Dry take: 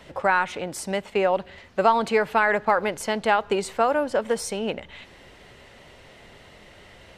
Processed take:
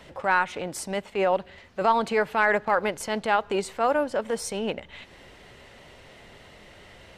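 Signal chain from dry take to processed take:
transient designer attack −7 dB, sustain −3 dB

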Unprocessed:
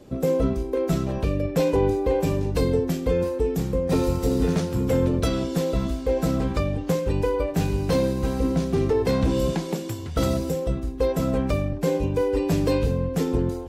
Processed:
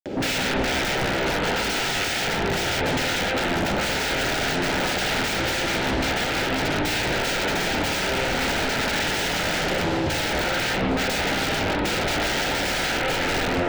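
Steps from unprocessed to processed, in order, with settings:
running median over 5 samples
granular cloud 243 ms, grains 14 per second
high-pass filter 220 Hz 6 dB per octave
in parallel at −9.5 dB: sine wavefolder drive 20 dB, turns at −20.5 dBFS
on the sum: upward compression, threshold −36 dBFS
wrap-around overflow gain 25.5 dB
Butterworth band-reject 1,100 Hz, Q 3.5
parametric band 12,000 Hz −12.5 dB 1.2 octaves
convolution reverb RT60 1.4 s, pre-delay 53 ms, DRR 4 dB
highs frequency-modulated by the lows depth 0.27 ms
level +7.5 dB

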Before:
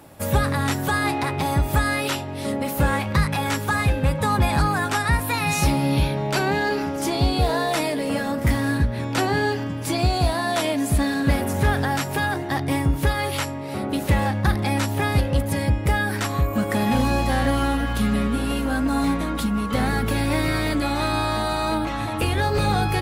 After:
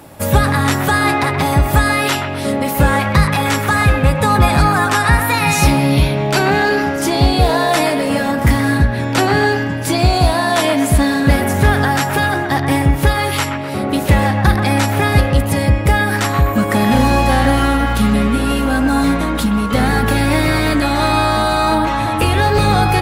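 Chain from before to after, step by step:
delay with a band-pass on its return 126 ms, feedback 47%, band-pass 1,300 Hz, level −5.5 dB
level +7.5 dB

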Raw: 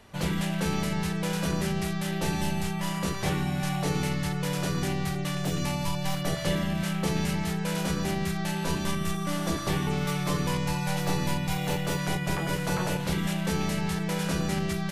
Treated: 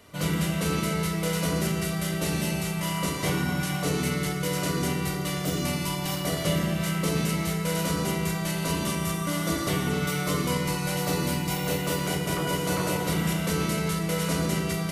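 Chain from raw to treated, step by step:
high-shelf EQ 8,100 Hz +8.5 dB
notch comb filter 850 Hz
feedback delay network reverb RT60 2.9 s, high-frequency decay 0.5×, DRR 2 dB
level +1 dB

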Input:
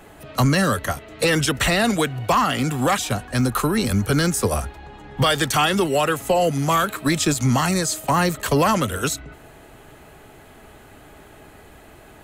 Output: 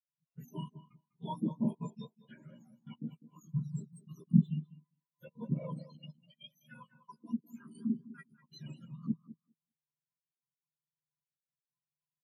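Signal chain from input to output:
frequency axis turned over on the octave scale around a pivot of 1,300 Hz
0:03.59–0:03.97: healed spectral selection 1,300–3,500 Hz both
0:06.12–0:08.49: high-pass filter 280 Hz 6 dB per octave
flanger swept by the level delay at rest 8.1 ms, full sweep at −17 dBFS
hollow resonant body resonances 990/2,900 Hz, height 10 dB, ringing for 25 ms
gate pattern ".xxxxxxxx.x.xx" 199 BPM −24 dB
double-tracking delay 13 ms −3.5 dB
tape delay 202 ms, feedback 39%, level −5 dB, low-pass 3,400 Hz
every bin expanded away from the loudest bin 2.5 to 1
level −8 dB

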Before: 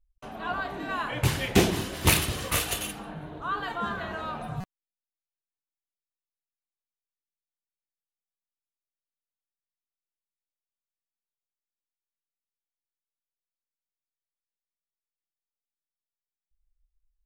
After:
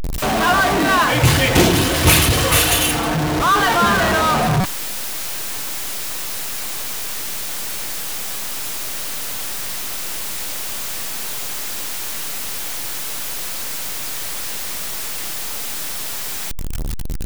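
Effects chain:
converter with a step at zero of −26 dBFS
leveller curve on the samples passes 3
0:01.04–0:03.38: notch comb filter 200 Hz

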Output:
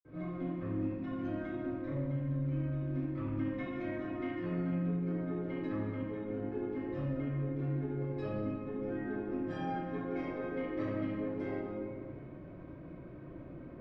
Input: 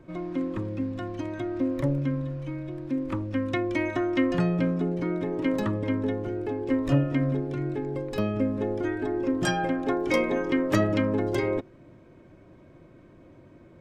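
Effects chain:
downward compressor 12 to 1, threshold −37 dBFS, peak gain reduction 20 dB
convolution reverb RT60 2.1 s, pre-delay 46 ms, DRR −60 dB

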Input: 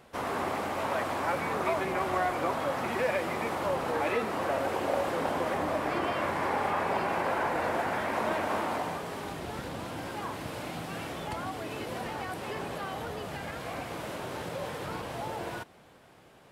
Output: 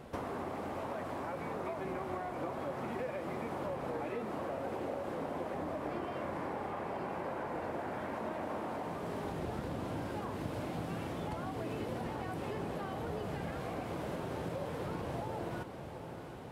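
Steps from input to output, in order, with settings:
downward compressor 6 to 1, threshold −43 dBFS, peak gain reduction 17.5 dB
tilt shelving filter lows +5.5 dB, about 810 Hz
feedback delay with all-pass diffusion 738 ms, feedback 64%, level −10 dB
level +4 dB

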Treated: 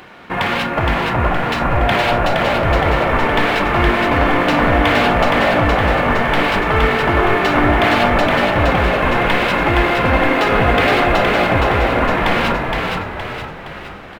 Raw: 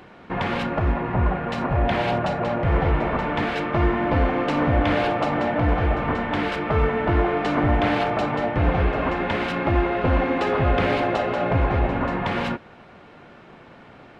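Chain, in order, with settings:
running median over 5 samples
tilt shelving filter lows −5 dB, about 910 Hz
echo with shifted repeats 467 ms, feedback 50%, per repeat −53 Hz, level −3 dB
level +7 dB

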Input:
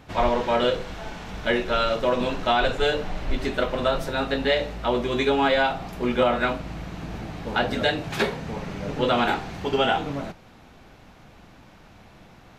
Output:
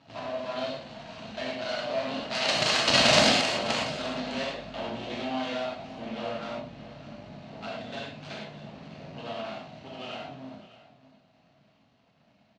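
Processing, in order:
source passing by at 0:03.07, 22 m/s, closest 4.1 metres
bass and treble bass +12 dB, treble 0 dB
mains-hum notches 60/120/180/240 Hz
in parallel at +3 dB: downward compressor 6 to 1, threshold −50 dBFS, peak gain reduction 38 dB
on the sum: half-wave rectification
harmonic generator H 4 −19 dB, 8 −6 dB, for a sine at 1 dBFS
wrap-around overflow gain 25.5 dB
loudspeaker in its box 180–6,900 Hz, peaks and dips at 380 Hz −6 dB, 660 Hz +8 dB, 2,800 Hz +7 dB, 4,300 Hz +8 dB
on a send: single-tap delay 605 ms −16.5 dB
on the sum: reverb whose tail is shaped and stops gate 140 ms flat, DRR −4 dB
level +6 dB

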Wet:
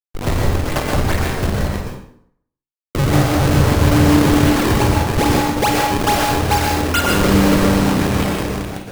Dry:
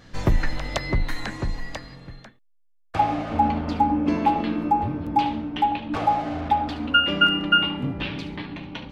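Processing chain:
0:03.48–0:04.04: sub-octave generator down 1 octave, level +3 dB
automatic gain control gain up to 4 dB
resonators tuned to a chord C2 major, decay 0.31 s
fuzz pedal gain 36 dB, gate −36 dBFS
sample-and-hold swept by an LFO 36×, swing 160% 2.4 Hz
flutter between parallel walls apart 8.6 metres, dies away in 0.3 s
dense smooth reverb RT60 0.65 s, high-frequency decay 0.75×, pre-delay 105 ms, DRR −0.5 dB

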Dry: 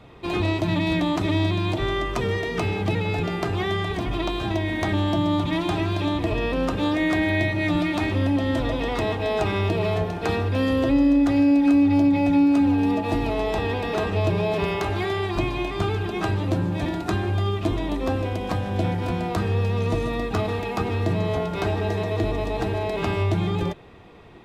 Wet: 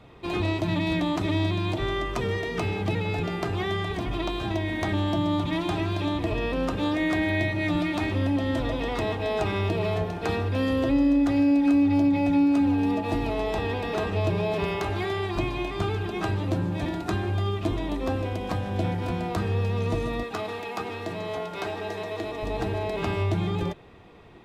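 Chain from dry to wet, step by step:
0:20.23–0:22.43: high-pass filter 490 Hz 6 dB per octave
level −3 dB

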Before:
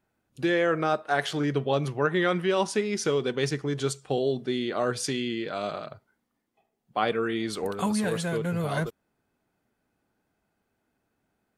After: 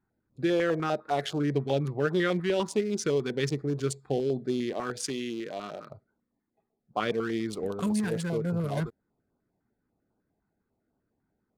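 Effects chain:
adaptive Wiener filter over 15 samples
0:04.73–0:05.90: high-pass filter 290 Hz 6 dB per octave
notch on a step sequencer 10 Hz 570–1,900 Hz

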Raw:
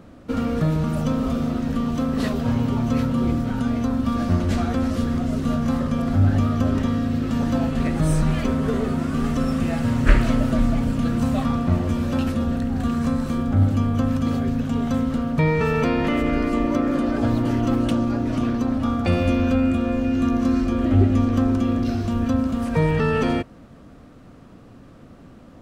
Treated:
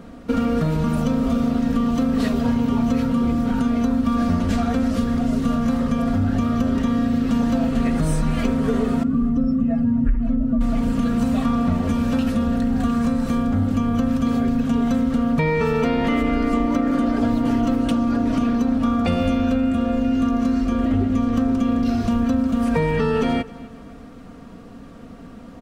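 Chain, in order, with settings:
0:09.03–0:10.61: expanding power law on the bin magnitudes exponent 1.7
comb filter 4.3 ms, depth 51%
downward compressor 4 to 1, threshold −21 dBFS, peak gain reduction 12.5 dB
repeating echo 259 ms, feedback 37%, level −20.5 dB
level +4 dB

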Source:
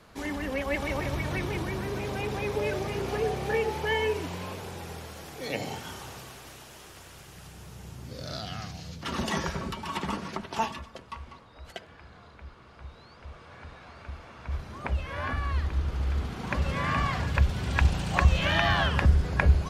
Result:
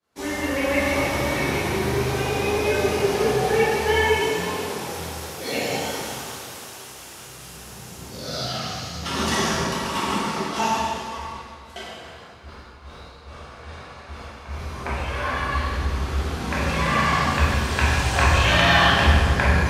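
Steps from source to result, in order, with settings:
downward expander −40 dBFS
high-pass filter 65 Hz
bass and treble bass −4 dB, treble +5 dB
reversed playback
upward compression, threshold −40 dBFS
reversed playback
dense smooth reverb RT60 2 s, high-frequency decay 0.85×, DRR −8.5 dB

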